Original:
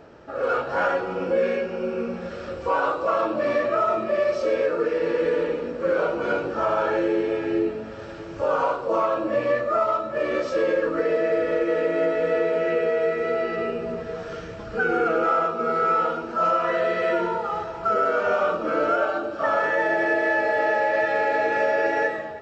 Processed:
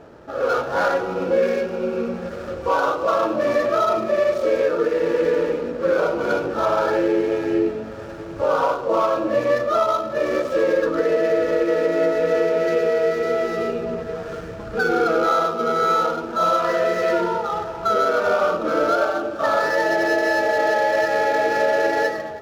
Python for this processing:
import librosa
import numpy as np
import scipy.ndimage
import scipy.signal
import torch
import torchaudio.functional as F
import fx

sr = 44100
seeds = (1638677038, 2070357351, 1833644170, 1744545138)

y = scipy.signal.medfilt(x, 15)
y = F.gain(torch.from_numpy(y), 3.5).numpy()